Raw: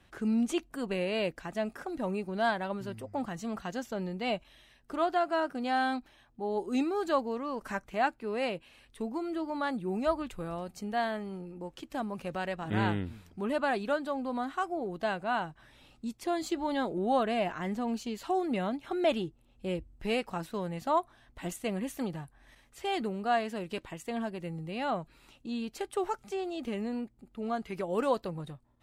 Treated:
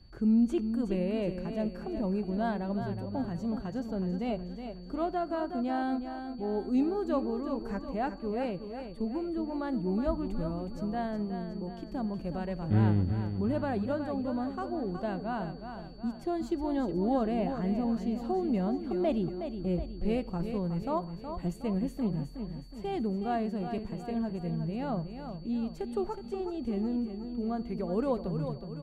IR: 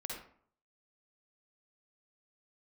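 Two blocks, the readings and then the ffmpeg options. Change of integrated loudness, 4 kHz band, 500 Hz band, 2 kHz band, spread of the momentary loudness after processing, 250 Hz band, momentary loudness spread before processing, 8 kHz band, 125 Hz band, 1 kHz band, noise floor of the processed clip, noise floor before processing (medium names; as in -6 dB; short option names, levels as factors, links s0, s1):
+1.0 dB, -8.5 dB, -1.0 dB, -9.0 dB, 8 LU, +4.0 dB, 10 LU, under -10 dB, +7.5 dB, -4.5 dB, -44 dBFS, -64 dBFS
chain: -filter_complex "[0:a]lowshelf=f=130:g=11.5,aeval=exprs='val(0)+0.00251*sin(2*PI*4500*n/s)':c=same,tiltshelf=f=800:g=7.5,aecho=1:1:368|736|1104|1472|1840|2208:0.376|0.184|0.0902|0.0442|0.0217|0.0106,asplit=2[s0][s1];[1:a]atrim=start_sample=2205[s2];[s1][s2]afir=irnorm=-1:irlink=0,volume=0.126[s3];[s0][s3]amix=inputs=2:normalize=0,volume=0.501"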